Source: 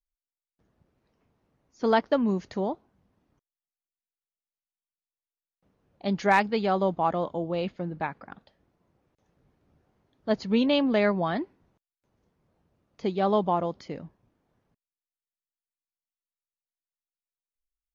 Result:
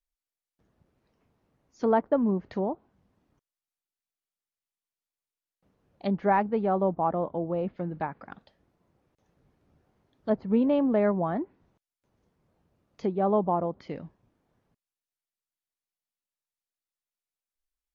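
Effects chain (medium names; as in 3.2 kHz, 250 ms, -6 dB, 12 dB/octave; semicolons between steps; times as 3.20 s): low-pass that closes with the level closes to 1.1 kHz, closed at -25.5 dBFS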